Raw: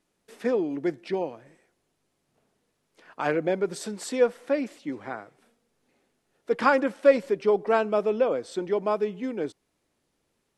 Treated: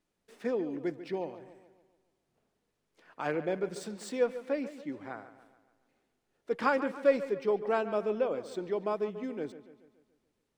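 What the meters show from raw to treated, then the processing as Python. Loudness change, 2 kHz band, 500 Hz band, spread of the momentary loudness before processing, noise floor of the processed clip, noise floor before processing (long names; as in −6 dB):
−6.5 dB, −7.0 dB, −6.5 dB, 13 LU, −81 dBFS, −76 dBFS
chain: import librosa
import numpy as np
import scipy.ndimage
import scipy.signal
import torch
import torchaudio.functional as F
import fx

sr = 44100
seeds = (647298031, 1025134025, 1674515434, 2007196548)

p1 = scipy.signal.medfilt(x, 3)
p2 = fx.low_shelf(p1, sr, hz=85.0, db=5.5)
p3 = p2 + fx.echo_wet_lowpass(p2, sr, ms=142, feedback_pct=50, hz=3800.0, wet_db=-13.5, dry=0)
y = F.gain(torch.from_numpy(p3), -7.0).numpy()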